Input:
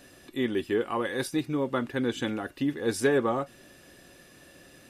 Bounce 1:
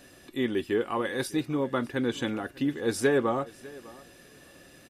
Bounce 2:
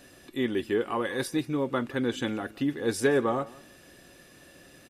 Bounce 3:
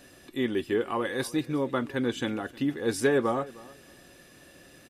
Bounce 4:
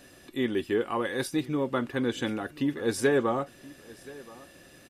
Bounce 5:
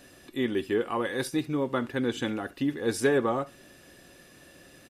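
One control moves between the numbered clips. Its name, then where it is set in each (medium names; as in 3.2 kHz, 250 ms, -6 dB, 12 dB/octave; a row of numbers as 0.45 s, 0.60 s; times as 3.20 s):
feedback delay, time: 600 ms, 171 ms, 310 ms, 1026 ms, 68 ms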